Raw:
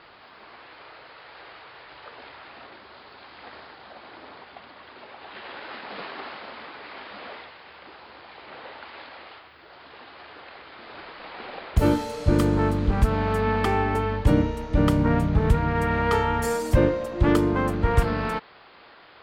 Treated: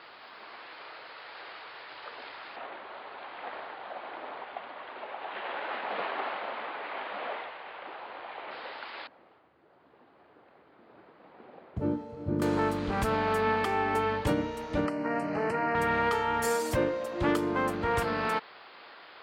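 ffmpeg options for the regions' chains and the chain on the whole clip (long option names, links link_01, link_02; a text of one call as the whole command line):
ffmpeg -i in.wav -filter_complex "[0:a]asettb=1/sr,asplit=3[link_01][link_02][link_03];[link_01]atrim=end=2.564[link_04];[link_02]atrim=start=2.56:end=8.51,asetpts=PTS-STARTPTS,afade=type=in:duration=0.004:curve=qsin,afade=type=out:start_time=5.946:duration=0.004:curve=qsin,lowpass=frequency=3400:width=0.5412,lowpass=frequency=3400:width=1.3066,equalizer=frequency=680:width=0.98:gain=6.5[link_05];[link_03]atrim=start=8.506[link_06];[link_04][link_05]acrossfade=duration=0.004:curve1=hsin:curve2=qsin[link_07];[link_07][link_06]acrossfade=duration=0.004:curve1=qsin:curve2=hsin,asettb=1/sr,asplit=3[link_08][link_09][link_10];[link_08]atrim=end=9.074[link_11];[link_09]atrim=start=9.07:end=12.42,asetpts=PTS-STARTPTS,afade=type=in:duration=0.004:curve=qsin,afade=type=out:start_time=3.346:duration=0.004:curve=qsin,bandpass=frequency=140:width_type=q:width=0.85,aecho=1:1:355:0.158,atrim=end_sample=147735[link_12];[link_10]atrim=start=12.416[link_13];[link_11][link_12]acrossfade=duration=0.004:curve1=hsin:curve2=qsin[link_14];[link_14][link_13]acrossfade=duration=0.004:curve1=qsin:curve2=hsin,asettb=1/sr,asplit=3[link_15][link_16][link_17];[link_15]atrim=end=14.864[link_18];[link_16]atrim=start=14.86:end=15.75,asetpts=PTS-STARTPTS,afade=type=in:duration=0.004:curve=qsin,afade=type=out:start_time=0.886:duration=0.004:curve=qsin,asuperstop=centerf=3500:order=8:qfactor=3.4,highpass=220,equalizer=frequency=300:width_type=q:width=4:gain=3,equalizer=frequency=640:width_type=q:width=4:gain=6,equalizer=frequency=1900:width_type=q:width=4:gain=4,equalizer=frequency=3800:width_type=q:width=4:gain=-3,equalizer=frequency=6700:width_type=q:width=4:gain=-6,lowpass=frequency=9600:width=0.5412,lowpass=frequency=9600:width=1.3066,acrossover=split=2500|5300[link_19][link_20][link_21];[link_19]acompressor=threshold=-24dB:ratio=4[link_22];[link_20]acompressor=threshold=-50dB:ratio=4[link_23];[link_21]acompressor=threshold=-59dB:ratio=4[link_24];[link_22][link_23][link_24]amix=inputs=3:normalize=0[link_25];[link_17]atrim=start=15.746[link_26];[link_18][link_25]acrossfade=duration=0.004:curve1=hsin:curve2=qsin[link_27];[link_27][link_26]acrossfade=duration=0.004:curve1=qsin:curve2=hsin,highpass=frequency=410:poles=1,alimiter=limit=-18.5dB:level=0:latency=1:release=450,volume=1dB" out.wav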